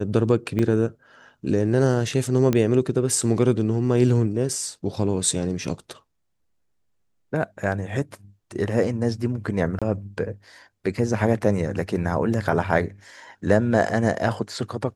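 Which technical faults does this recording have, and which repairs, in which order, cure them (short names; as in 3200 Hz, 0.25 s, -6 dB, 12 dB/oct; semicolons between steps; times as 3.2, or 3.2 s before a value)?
0.59 gap 2 ms
2.53 pop -9 dBFS
9.79–9.82 gap 26 ms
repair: de-click; interpolate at 0.59, 2 ms; interpolate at 9.79, 26 ms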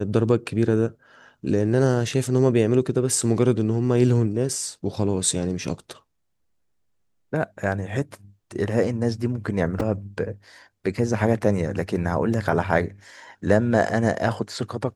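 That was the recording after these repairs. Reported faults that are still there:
none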